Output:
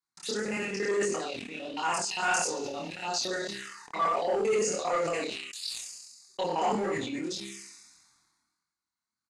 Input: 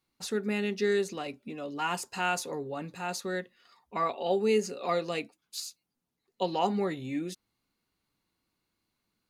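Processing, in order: local time reversal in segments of 57 ms; doubler 25 ms -2 dB; on a send: thin delay 68 ms, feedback 75%, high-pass 2900 Hz, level -13.5 dB; on the sum: envelope phaser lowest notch 500 Hz, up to 3700 Hz, full sweep at -26 dBFS; tone controls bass -2 dB, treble -3 dB; chorus 1.6 Hz, depth 7.2 ms; sample leveller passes 1; tilt +3 dB/oct; de-hum 66.59 Hz, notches 6; sample leveller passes 1; LPF 8400 Hz 24 dB/oct; sustainer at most 39 dB/s; gain -2 dB

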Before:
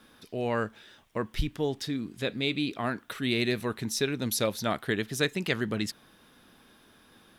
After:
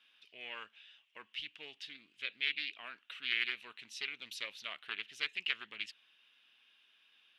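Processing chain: band-pass 2800 Hz, Q 6.1; Doppler distortion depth 0.19 ms; gain +4 dB

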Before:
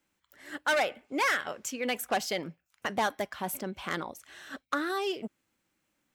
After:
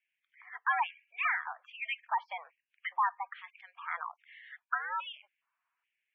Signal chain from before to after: LFO high-pass square 1.2 Hz 890–2100 Hz; high shelf 2200 Hz -5 dB; spectral gate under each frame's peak -15 dB strong; mistuned SSB +160 Hz 360–3000 Hz; gain -4 dB

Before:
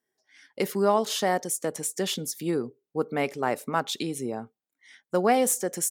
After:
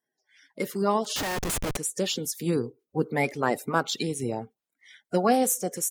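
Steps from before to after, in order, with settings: bin magnitudes rounded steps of 30 dB; 1.16–1.77 Schmitt trigger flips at -35.5 dBFS; vocal rider within 3 dB 2 s

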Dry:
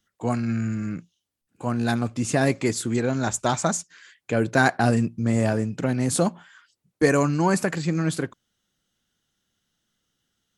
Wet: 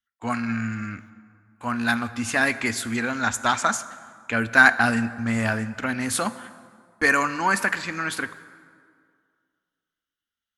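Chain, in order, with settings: gate -44 dBFS, range -18 dB; EQ curve 100 Hz 0 dB, 150 Hz -20 dB, 230 Hz -1 dB, 340 Hz -10 dB, 540 Hz -7 dB, 1400 Hz +9 dB, 2500 Hz +7 dB, 8000 Hz -3 dB, 12000 Hz +6 dB; plate-style reverb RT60 2.1 s, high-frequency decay 0.6×, DRR 13.5 dB

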